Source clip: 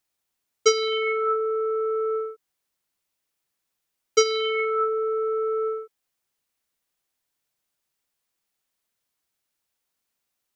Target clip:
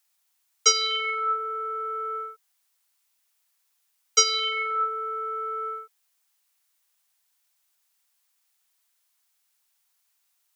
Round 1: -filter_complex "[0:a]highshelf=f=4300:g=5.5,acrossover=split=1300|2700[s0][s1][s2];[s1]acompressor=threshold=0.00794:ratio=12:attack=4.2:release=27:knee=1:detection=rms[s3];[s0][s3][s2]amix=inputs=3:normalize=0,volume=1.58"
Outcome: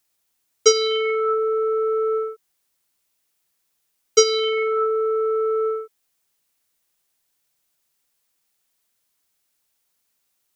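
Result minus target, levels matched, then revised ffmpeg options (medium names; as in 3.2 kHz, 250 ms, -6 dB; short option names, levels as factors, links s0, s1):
1 kHz band -4.5 dB
-filter_complex "[0:a]highpass=f=720:w=0.5412,highpass=f=720:w=1.3066,highshelf=f=4300:g=5.5,acrossover=split=1300|2700[s0][s1][s2];[s1]acompressor=threshold=0.00794:ratio=12:attack=4.2:release=27:knee=1:detection=rms[s3];[s0][s3][s2]amix=inputs=3:normalize=0,volume=1.58"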